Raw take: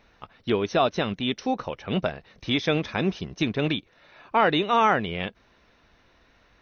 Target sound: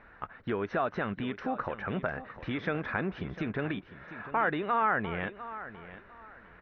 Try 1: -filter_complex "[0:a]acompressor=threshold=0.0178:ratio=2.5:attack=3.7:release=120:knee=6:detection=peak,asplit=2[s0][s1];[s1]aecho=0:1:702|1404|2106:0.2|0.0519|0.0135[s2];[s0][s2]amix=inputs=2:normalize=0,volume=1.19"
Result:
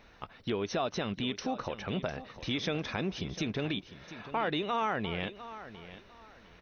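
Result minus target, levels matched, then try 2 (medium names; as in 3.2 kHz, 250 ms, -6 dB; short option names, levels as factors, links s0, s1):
2 kHz band -3.5 dB
-filter_complex "[0:a]acompressor=threshold=0.0178:ratio=2.5:attack=3.7:release=120:knee=6:detection=peak,lowpass=f=1600:t=q:w=2.6,asplit=2[s0][s1];[s1]aecho=0:1:702|1404|2106:0.2|0.0519|0.0135[s2];[s0][s2]amix=inputs=2:normalize=0,volume=1.19"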